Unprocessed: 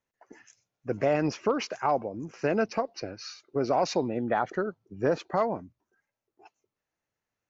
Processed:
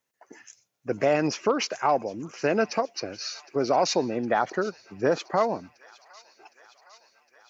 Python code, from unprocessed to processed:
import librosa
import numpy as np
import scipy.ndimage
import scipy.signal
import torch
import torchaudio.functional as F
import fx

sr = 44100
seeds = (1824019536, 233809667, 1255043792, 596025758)

p1 = fx.highpass(x, sr, hz=170.0, slope=6)
p2 = fx.high_shelf(p1, sr, hz=4000.0, db=7.5)
p3 = p2 + fx.echo_wet_highpass(p2, sr, ms=761, feedback_pct=72, hz=1500.0, wet_db=-19.0, dry=0)
y = p3 * librosa.db_to_amplitude(3.0)